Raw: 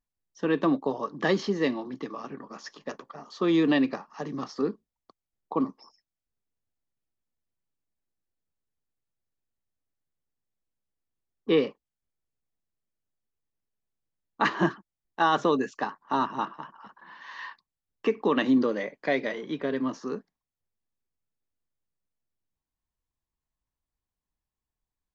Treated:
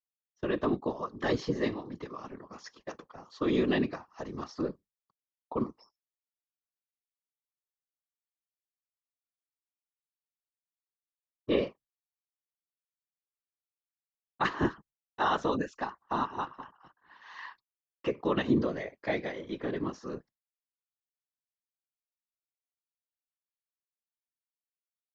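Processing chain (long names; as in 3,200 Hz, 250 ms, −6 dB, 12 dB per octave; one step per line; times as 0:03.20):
random phases in short frames
downward expander −44 dBFS
level −5 dB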